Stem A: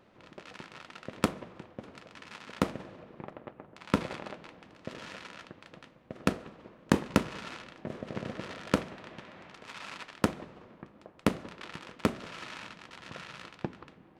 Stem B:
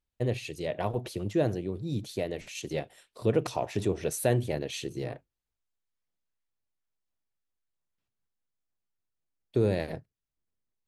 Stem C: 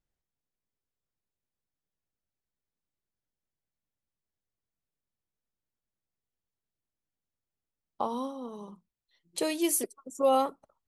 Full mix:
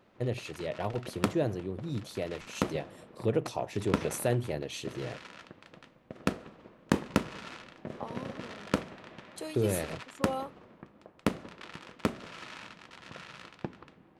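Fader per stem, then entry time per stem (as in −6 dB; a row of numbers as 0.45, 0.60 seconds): −2.0, −3.0, −10.5 decibels; 0.00, 0.00, 0.00 seconds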